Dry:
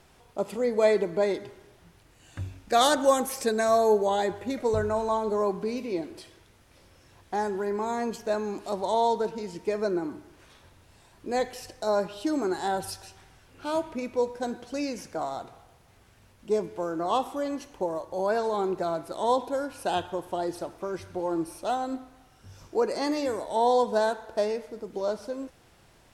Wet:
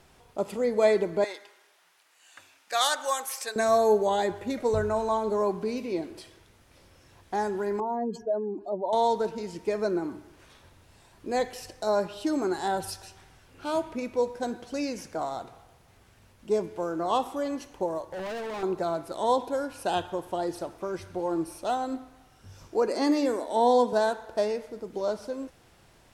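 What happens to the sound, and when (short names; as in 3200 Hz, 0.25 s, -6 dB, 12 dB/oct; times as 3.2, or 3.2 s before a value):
1.24–3.56 HPF 980 Hz
7.8–8.93 spectral contrast raised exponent 2.1
18.08–18.63 hard clip -33 dBFS
22.88–23.93 resonant low shelf 190 Hz -8.5 dB, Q 3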